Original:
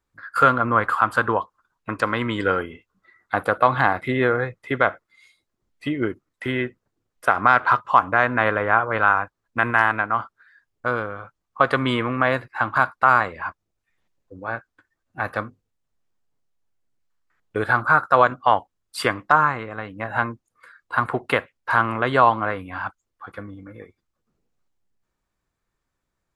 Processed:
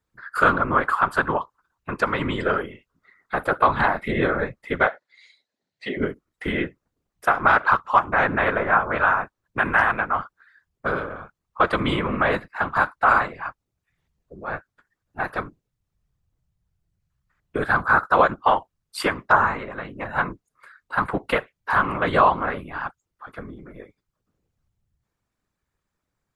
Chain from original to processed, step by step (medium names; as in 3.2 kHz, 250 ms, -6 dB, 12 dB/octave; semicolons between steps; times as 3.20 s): whisper effect; 4.87–5.97 s: cabinet simulation 290–7400 Hz, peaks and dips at 330 Hz -4 dB, 590 Hz +4 dB, 1.2 kHz -8 dB, 1.8 kHz +7 dB, 4.1 kHz +9 dB; trim -1 dB